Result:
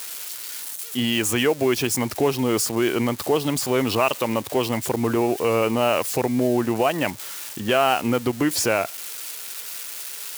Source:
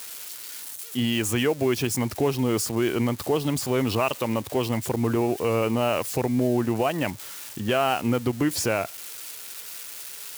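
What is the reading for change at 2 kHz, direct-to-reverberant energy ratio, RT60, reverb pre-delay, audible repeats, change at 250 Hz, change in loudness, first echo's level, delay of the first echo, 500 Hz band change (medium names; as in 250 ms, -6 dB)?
+4.5 dB, no reverb, no reverb, no reverb, no echo, +1.5 dB, +3.0 dB, no echo, no echo, +3.5 dB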